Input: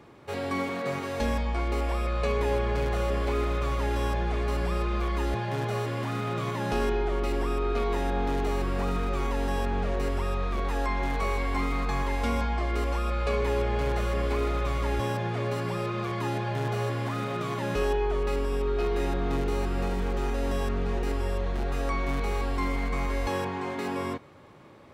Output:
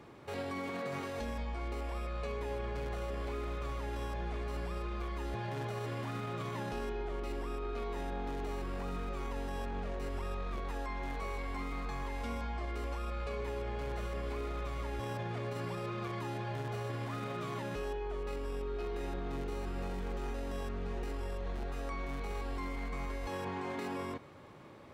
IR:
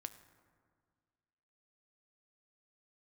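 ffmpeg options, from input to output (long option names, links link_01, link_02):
-af "alimiter=level_in=5dB:limit=-24dB:level=0:latency=1:release=37,volume=-5dB,volume=-2dB"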